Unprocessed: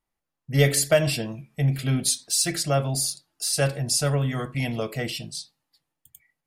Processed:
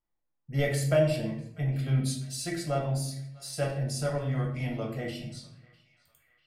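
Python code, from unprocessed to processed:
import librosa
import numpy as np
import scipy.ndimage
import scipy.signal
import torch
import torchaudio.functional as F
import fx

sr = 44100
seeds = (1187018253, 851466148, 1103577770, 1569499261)

p1 = fx.high_shelf(x, sr, hz=2500.0, db=-10.0)
p2 = p1 + fx.echo_banded(p1, sr, ms=647, feedback_pct=61, hz=2200.0, wet_db=-21.0, dry=0)
p3 = fx.room_shoebox(p2, sr, seeds[0], volume_m3=120.0, walls='mixed', distance_m=0.85)
y = p3 * librosa.db_to_amplitude(-7.5)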